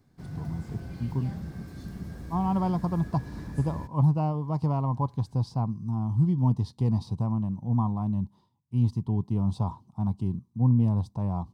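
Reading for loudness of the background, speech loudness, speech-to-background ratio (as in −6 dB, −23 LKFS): −40.5 LKFS, −28.0 LKFS, 12.5 dB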